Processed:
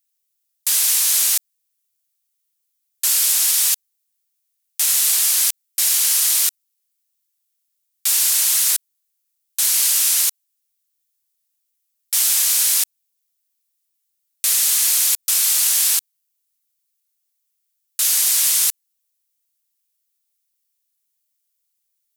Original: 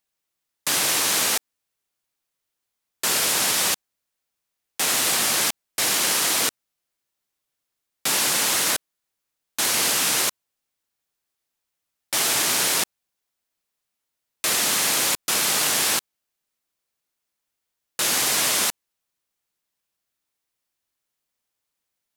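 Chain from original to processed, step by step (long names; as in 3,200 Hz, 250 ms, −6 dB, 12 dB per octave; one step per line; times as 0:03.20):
first difference
level +5 dB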